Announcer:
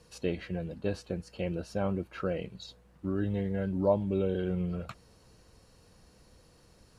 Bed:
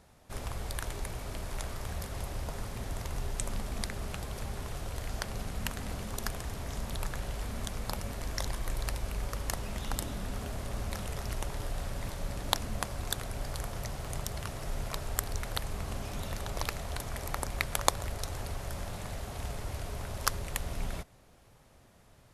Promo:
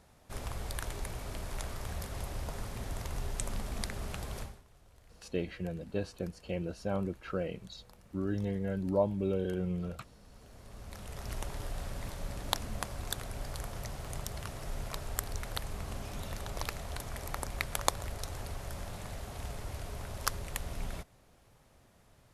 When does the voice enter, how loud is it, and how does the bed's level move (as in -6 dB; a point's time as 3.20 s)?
5.10 s, -2.5 dB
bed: 4.41 s -1.5 dB
4.64 s -23 dB
10.18 s -23 dB
11.34 s -3 dB